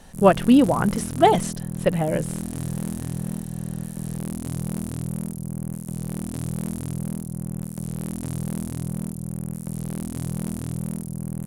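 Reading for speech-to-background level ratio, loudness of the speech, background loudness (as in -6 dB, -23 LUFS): 10.5 dB, -20.0 LUFS, -30.5 LUFS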